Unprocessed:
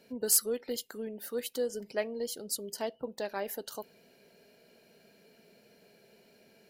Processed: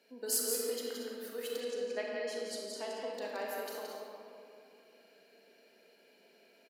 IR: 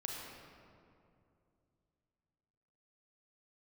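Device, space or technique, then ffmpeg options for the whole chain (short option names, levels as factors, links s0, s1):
stadium PA: -filter_complex "[0:a]highpass=f=240:w=0.5412,highpass=f=240:w=1.3066,equalizer=f=2300:t=o:w=2.8:g=5,aecho=1:1:172|233.2:0.562|0.251[s0];[1:a]atrim=start_sample=2205[s1];[s0][s1]afir=irnorm=-1:irlink=0,asettb=1/sr,asplit=3[s2][s3][s4];[s2]atrim=end=1.604[s5];[s3]atrim=start=1.6:end=3.14,asetpts=PTS-STARTPTS,afade=t=in:d=0.004:c=qsin,afade=t=out:st=1.536:d=0.004:c=qsin,lowpass=7700[s6];[s4]atrim=start=3.136[s7];[s5][s6]acrossfade=d=0.004:c1=hsin:c2=qsin[s8];[s8][s7]acrossfade=d=0.004:c1=qsin:c2=hsin,volume=0.501"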